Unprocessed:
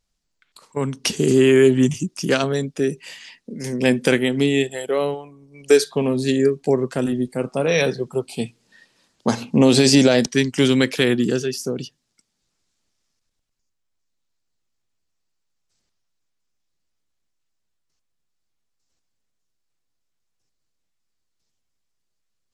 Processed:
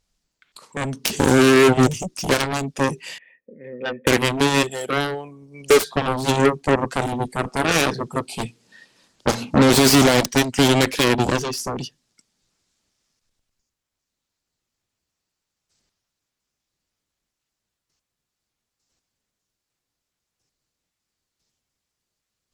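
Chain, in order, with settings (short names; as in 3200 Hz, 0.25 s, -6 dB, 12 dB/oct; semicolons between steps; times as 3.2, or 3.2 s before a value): 3.18–4.07 vocal tract filter e; soft clip -7 dBFS, distortion -19 dB; added harmonics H 7 -9 dB, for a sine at -7 dBFS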